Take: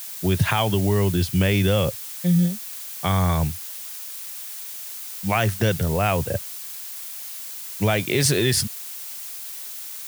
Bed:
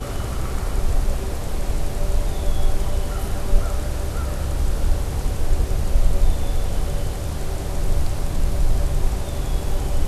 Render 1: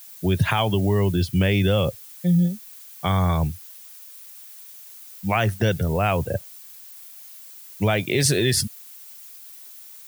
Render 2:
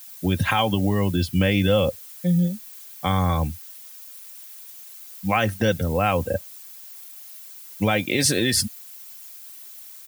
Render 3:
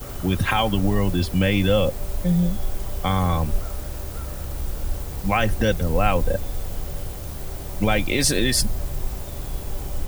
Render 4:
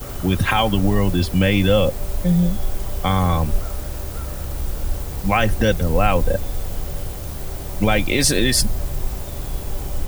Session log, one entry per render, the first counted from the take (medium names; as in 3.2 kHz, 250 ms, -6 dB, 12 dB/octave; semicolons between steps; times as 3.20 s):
noise reduction 11 dB, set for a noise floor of -35 dBFS
comb 3.8 ms, depth 55%
add bed -7 dB
trim +3 dB; peak limiter -3 dBFS, peak gain reduction 1.5 dB